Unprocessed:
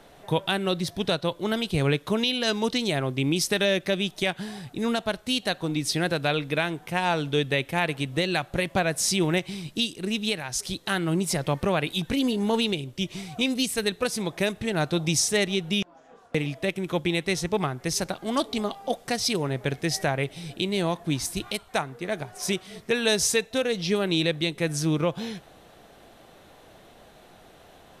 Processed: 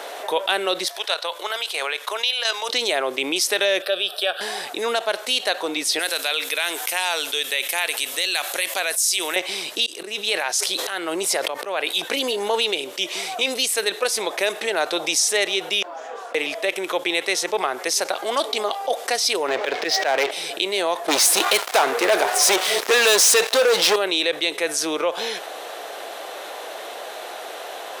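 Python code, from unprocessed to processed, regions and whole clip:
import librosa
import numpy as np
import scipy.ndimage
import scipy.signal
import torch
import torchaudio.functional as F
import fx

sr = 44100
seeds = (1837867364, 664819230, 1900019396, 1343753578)

y = fx.chain(x, sr, fx.highpass(hz=790.0, slope=12),
    fx.level_steps(step_db=9), at=(0.88, 2.69))
y = fx.chain(y, sr, fx.highpass(hz=200.0, slope=12),
    fx.fixed_phaser(hz=1400.0, stages=8), at=(3.82, 4.41))
y = fx.chain(y, sr, fx.pre_emphasis(coefficient=0.9),
    fx.env_flatten(amount_pct=50), at=(5.99, 9.36))
y = fx.chain(y, sr, fx.auto_swell(attack_ms=323.0),
    fx.sustainer(db_per_s=77.0), at=(9.86, 11.87))
y = fx.chain(y, sr, fx.lowpass(hz=4900.0, slope=24),
    fx.auto_swell(attack_ms=119.0),
    fx.leveller(passes=3), at=(19.48, 20.31))
y = fx.chain(y, sr, fx.hum_notches(base_hz=50, count=3),
    fx.leveller(passes=5), at=(21.08, 23.96))
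y = scipy.signal.sosfilt(scipy.signal.butter(4, 440.0, 'highpass', fs=sr, output='sos'), y)
y = fx.env_flatten(y, sr, amount_pct=50)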